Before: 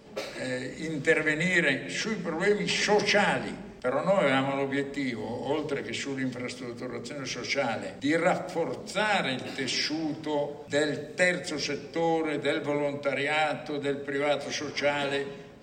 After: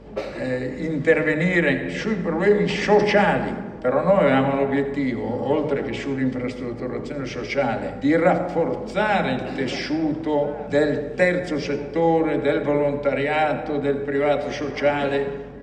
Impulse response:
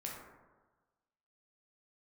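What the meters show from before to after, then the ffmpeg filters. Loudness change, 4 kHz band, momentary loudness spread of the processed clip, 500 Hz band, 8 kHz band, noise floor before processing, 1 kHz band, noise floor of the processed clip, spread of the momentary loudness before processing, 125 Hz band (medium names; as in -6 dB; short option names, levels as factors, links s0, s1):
+6.5 dB, -2.0 dB, 8 LU, +8.0 dB, no reading, -43 dBFS, +7.0 dB, -34 dBFS, 10 LU, +9.0 dB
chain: -filter_complex "[0:a]lowpass=f=1100:p=1,aeval=exprs='val(0)+0.00178*(sin(2*PI*50*n/s)+sin(2*PI*2*50*n/s)/2+sin(2*PI*3*50*n/s)/3+sin(2*PI*4*50*n/s)/4+sin(2*PI*5*50*n/s)/5)':c=same,asplit=2[s0][s1];[s1]adelay=1458,volume=0.141,highshelf=f=4000:g=-32.8[s2];[s0][s2]amix=inputs=2:normalize=0,asplit=2[s3][s4];[1:a]atrim=start_sample=2205,adelay=84[s5];[s4][s5]afir=irnorm=-1:irlink=0,volume=0.266[s6];[s3][s6]amix=inputs=2:normalize=0,volume=2.66"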